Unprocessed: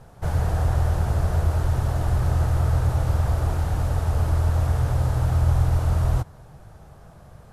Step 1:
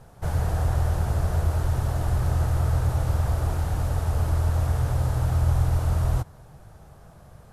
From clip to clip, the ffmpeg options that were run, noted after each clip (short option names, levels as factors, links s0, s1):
-af "highshelf=f=7600:g=4.5,volume=0.794"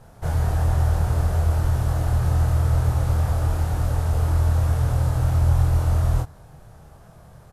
-filter_complex "[0:a]asplit=2[s0][s1];[s1]adelay=26,volume=0.708[s2];[s0][s2]amix=inputs=2:normalize=0"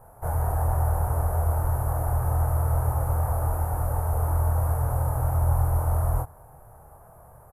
-af "firequalizer=gain_entry='entry(100,0);entry(180,-7);entry(480,3);entry(880,8);entry(1600,-2);entry(3700,-24);entry(11000,11)':delay=0.05:min_phase=1,volume=0.631"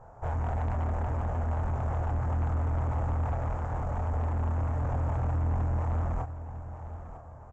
-af "asoftclip=type=tanh:threshold=0.0473,aresample=16000,aresample=44100,aecho=1:1:951|1902|2853:0.224|0.0716|0.0229"